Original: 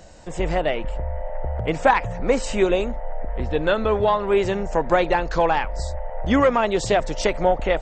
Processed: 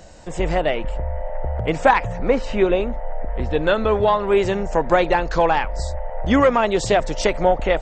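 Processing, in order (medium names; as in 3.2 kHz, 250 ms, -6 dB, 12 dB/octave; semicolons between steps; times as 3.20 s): 2.28–2.92 s: distance through air 180 m; trim +2 dB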